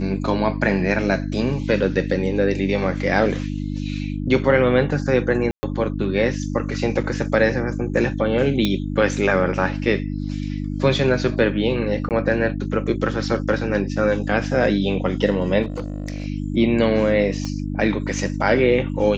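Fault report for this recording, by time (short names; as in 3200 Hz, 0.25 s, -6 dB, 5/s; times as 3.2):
hum 50 Hz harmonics 6 -26 dBFS
5.51–5.63 gap 0.12 s
8.65 pop -7 dBFS
12.09–12.11 gap 18 ms
15.62–16.26 clipped -22.5 dBFS
17.45 pop -15 dBFS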